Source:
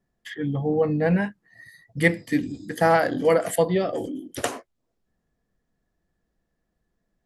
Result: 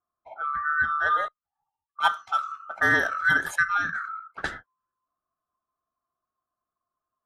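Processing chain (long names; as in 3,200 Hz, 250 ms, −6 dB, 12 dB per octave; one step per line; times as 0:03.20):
neighbouring bands swapped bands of 1,000 Hz
low-pass that shuts in the quiet parts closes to 640 Hz, open at −18.5 dBFS
0:01.28–0:01.99: guitar amp tone stack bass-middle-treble 6-0-2
level −3 dB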